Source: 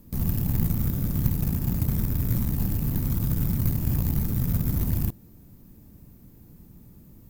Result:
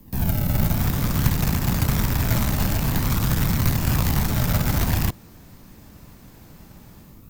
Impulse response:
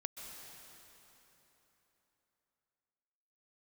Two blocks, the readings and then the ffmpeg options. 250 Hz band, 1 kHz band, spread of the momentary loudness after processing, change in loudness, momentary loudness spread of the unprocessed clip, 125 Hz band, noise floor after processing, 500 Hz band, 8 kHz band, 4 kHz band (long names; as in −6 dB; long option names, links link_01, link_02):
+3.5 dB, +15.5 dB, 2 LU, +4.0 dB, 1 LU, +3.0 dB, −47 dBFS, +9.5 dB, +10.5 dB, +16.0 dB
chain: -filter_complex "[0:a]acrossover=split=140|630|7400[link_01][link_02][link_03][link_04];[link_01]acrusher=samples=42:mix=1:aa=0.000001:lfo=1:lforange=42:lforate=0.49[link_05];[link_03]dynaudnorm=framelen=500:gausssize=3:maxgain=13dB[link_06];[link_05][link_02][link_06][link_04]amix=inputs=4:normalize=0,volume=3.5dB"